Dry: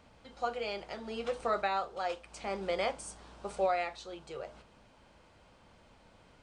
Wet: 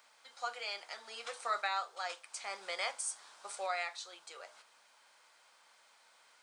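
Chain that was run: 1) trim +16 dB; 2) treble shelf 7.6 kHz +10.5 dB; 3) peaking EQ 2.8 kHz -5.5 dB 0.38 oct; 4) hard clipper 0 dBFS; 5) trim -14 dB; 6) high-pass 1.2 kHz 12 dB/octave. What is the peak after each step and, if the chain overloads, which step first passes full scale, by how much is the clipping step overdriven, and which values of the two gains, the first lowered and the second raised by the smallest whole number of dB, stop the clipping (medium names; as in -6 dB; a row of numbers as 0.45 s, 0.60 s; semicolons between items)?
-4.0 dBFS, -3.5 dBFS, -4.0 dBFS, -4.0 dBFS, -18.0 dBFS, -21.5 dBFS; nothing clips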